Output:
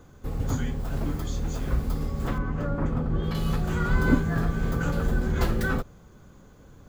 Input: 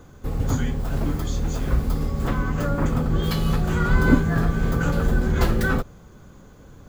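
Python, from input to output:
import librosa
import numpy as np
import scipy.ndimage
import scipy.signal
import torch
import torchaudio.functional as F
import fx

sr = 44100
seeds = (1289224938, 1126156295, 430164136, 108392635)

y = fx.lowpass(x, sr, hz=1600.0, slope=6, at=(2.38, 3.35))
y = y * 10.0 ** (-4.5 / 20.0)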